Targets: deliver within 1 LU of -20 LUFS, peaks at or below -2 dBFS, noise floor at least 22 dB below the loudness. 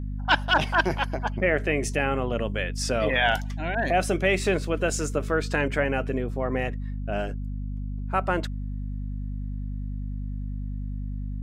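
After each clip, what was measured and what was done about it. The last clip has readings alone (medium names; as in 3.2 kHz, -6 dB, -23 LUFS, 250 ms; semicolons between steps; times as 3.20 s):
hum 50 Hz; highest harmonic 250 Hz; hum level -29 dBFS; loudness -27.0 LUFS; peak level -9.0 dBFS; loudness target -20.0 LUFS
-> hum notches 50/100/150/200/250 Hz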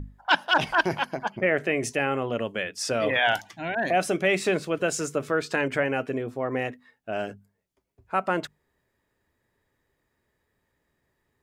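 hum not found; loudness -26.0 LUFS; peak level -10.0 dBFS; loudness target -20.0 LUFS
-> trim +6 dB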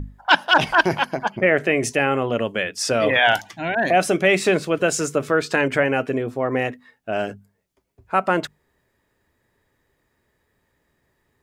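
loudness -20.5 LUFS; peak level -4.0 dBFS; noise floor -70 dBFS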